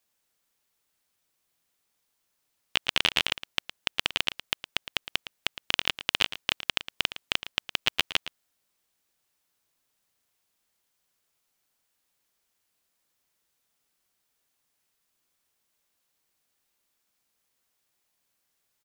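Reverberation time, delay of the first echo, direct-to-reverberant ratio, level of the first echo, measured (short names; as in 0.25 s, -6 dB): none, 0.112 s, none, -13.5 dB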